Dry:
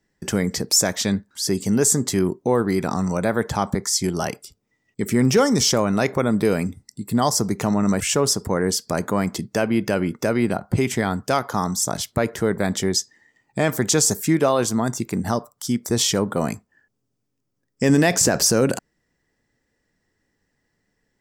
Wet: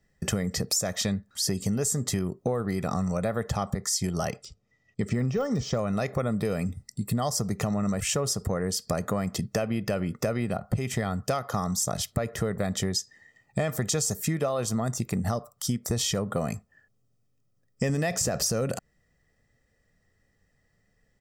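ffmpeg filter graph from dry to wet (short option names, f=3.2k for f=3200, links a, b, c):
-filter_complex "[0:a]asettb=1/sr,asplit=3[a][b][c];[a]atrim=end=4.304[d];[b]atrim=start=4.3:end=5.79,asetpts=PTS-STARTPTS,afade=t=in:d=0.004:c=qsin,afade=t=out:st=1.486:d=0.004:c=qsin,lowpass=f=7.1k:w=0.5412,lowpass=f=7.1k:w=1.3066,deesser=0.85[e];[c]atrim=start=5.786[f];[d][e]acrossfade=d=0.004:c1=hsin:c2=qsin[g];[g][f]acrossfade=d=0.004:c1=qsin:c2=hsin,lowshelf=f=250:g=5.5,aecho=1:1:1.6:0.53,acompressor=threshold=-22dB:ratio=10,volume=-1.5dB"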